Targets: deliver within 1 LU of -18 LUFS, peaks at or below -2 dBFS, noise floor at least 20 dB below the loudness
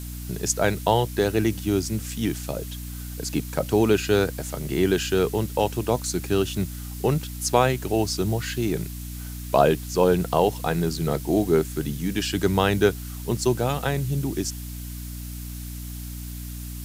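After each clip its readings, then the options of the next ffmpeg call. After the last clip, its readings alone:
hum 60 Hz; harmonics up to 300 Hz; hum level -32 dBFS; noise floor -35 dBFS; noise floor target -44 dBFS; loudness -24.0 LUFS; peak -3.5 dBFS; loudness target -18.0 LUFS
-> -af "bandreject=f=60:t=h:w=6,bandreject=f=120:t=h:w=6,bandreject=f=180:t=h:w=6,bandreject=f=240:t=h:w=6,bandreject=f=300:t=h:w=6"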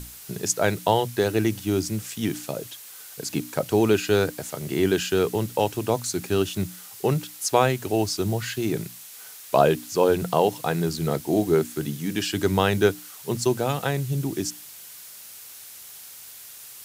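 hum none; noise floor -43 dBFS; noise floor target -45 dBFS
-> -af "afftdn=nr=6:nf=-43"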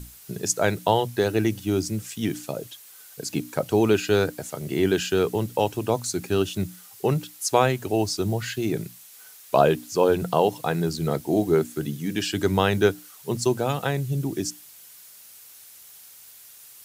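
noise floor -48 dBFS; loudness -24.5 LUFS; peak -4.5 dBFS; loudness target -18.0 LUFS
-> -af "volume=6.5dB,alimiter=limit=-2dB:level=0:latency=1"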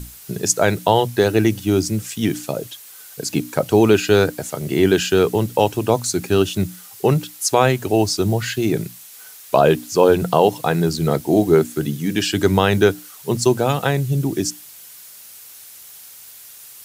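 loudness -18.5 LUFS; peak -2.0 dBFS; noise floor -41 dBFS

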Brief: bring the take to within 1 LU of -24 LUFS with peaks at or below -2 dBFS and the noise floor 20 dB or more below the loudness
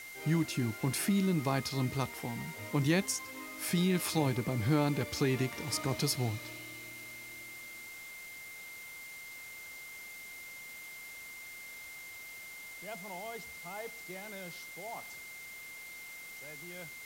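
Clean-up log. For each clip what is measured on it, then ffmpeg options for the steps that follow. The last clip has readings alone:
steady tone 2100 Hz; tone level -46 dBFS; noise floor -48 dBFS; noise floor target -56 dBFS; loudness -36.0 LUFS; peak -16.5 dBFS; loudness target -24.0 LUFS
-> -af "bandreject=f=2.1k:w=30"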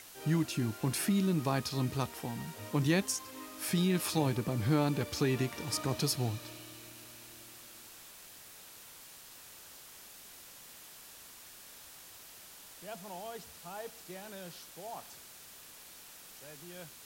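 steady tone none; noise floor -53 dBFS; noise floor target -54 dBFS
-> -af "afftdn=nr=6:nf=-53"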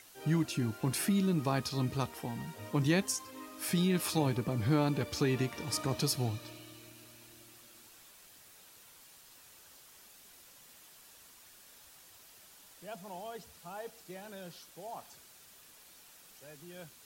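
noise floor -58 dBFS; loudness -33.5 LUFS; peak -17.0 dBFS; loudness target -24.0 LUFS
-> -af "volume=9.5dB"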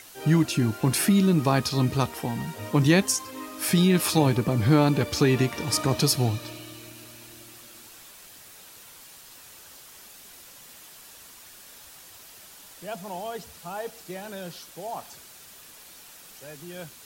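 loudness -24.0 LUFS; peak -7.5 dBFS; noise floor -48 dBFS

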